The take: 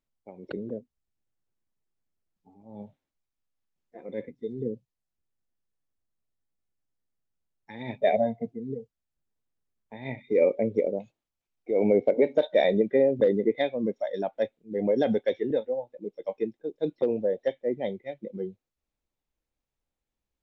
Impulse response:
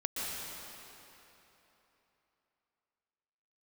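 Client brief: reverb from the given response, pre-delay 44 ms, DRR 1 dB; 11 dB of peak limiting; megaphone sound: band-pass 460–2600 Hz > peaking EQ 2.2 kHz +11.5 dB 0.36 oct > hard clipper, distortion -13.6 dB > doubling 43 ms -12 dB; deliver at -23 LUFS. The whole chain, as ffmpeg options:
-filter_complex "[0:a]alimiter=limit=0.0841:level=0:latency=1,asplit=2[s0][s1];[1:a]atrim=start_sample=2205,adelay=44[s2];[s1][s2]afir=irnorm=-1:irlink=0,volume=0.501[s3];[s0][s3]amix=inputs=2:normalize=0,highpass=460,lowpass=2600,equalizer=f=2200:t=o:w=0.36:g=11.5,asoftclip=type=hard:threshold=0.0398,asplit=2[s4][s5];[s5]adelay=43,volume=0.251[s6];[s4][s6]amix=inputs=2:normalize=0,volume=4.22"

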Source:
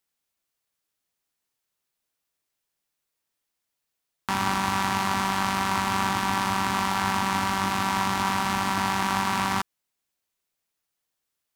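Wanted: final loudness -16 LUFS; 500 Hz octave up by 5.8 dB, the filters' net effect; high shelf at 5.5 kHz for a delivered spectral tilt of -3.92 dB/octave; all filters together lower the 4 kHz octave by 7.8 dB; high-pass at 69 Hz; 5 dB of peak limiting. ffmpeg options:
-af "highpass=69,equalizer=f=500:t=o:g=8.5,equalizer=f=4000:t=o:g=-8,highshelf=f=5500:g=-7,volume=3.35,alimiter=limit=0.631:level=0:latency=1"

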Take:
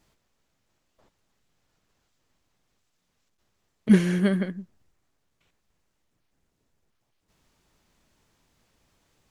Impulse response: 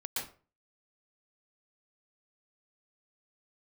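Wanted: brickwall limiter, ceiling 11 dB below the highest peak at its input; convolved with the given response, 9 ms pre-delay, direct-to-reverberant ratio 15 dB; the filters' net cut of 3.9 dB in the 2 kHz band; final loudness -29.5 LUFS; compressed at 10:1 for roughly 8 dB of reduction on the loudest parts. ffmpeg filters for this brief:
-filter_complex "[0:a]equalizer=f=2000:t=o:g=-5,acompressor=threshold=0.112:ratio=10,alimiter=limit=0.0631:level=0:latency=1,asplit=2[s0][s1];[1:a]atrim=start_sample=2205,adelay=9[s2];[s1][s2]afir=irnorm=-1:irlink=0,volume=0.126[s3];[s0][s3]amix=inputs=2:normalize=0,volume=1.58"

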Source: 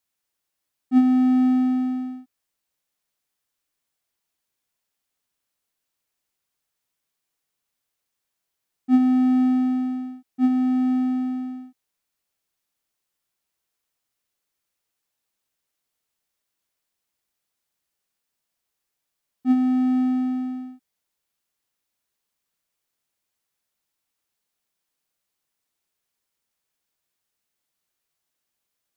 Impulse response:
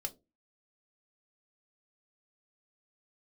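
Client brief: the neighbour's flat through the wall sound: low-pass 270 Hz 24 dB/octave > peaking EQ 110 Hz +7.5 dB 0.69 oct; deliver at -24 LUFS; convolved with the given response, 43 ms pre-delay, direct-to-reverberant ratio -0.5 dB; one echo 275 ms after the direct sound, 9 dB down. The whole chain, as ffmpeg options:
-filter_complex "[0:a]aecho=1:1:275:0.355,asplit=2[s0][s1];[1:a]atrim=start_sample=2205,adelay=43[s2];[s1][s2]afir=irnorm=-1:irlink=0,volume=1.19[s3];[s0][s3]amix=inputs=2:normalize=0,lowpass=f=270:w=0.5412,lowpass=f=270:w=1.3066,equalizer=f=110:t=o:w=0.69:g=7.5,volume=0.708"

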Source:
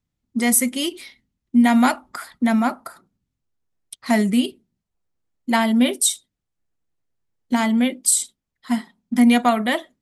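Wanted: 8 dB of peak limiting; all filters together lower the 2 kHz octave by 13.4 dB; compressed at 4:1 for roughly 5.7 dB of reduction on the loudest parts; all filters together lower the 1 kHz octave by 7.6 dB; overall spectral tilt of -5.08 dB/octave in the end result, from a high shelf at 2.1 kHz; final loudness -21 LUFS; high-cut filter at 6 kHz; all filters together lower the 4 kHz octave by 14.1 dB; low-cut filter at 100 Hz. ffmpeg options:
-af "highpass=100,lowpass=6000,equalizer=f=1000:t=o:g=-8,equalizer=f=2000:t=o:g=-8,highshelf=f=2100:g=-7.5,equalizer=f=4000:t=o:g=-7,acompressor=threshold=0.126:ratio=4,volume=2.66,alimiter=limit=0.237:level=0:latency=1"

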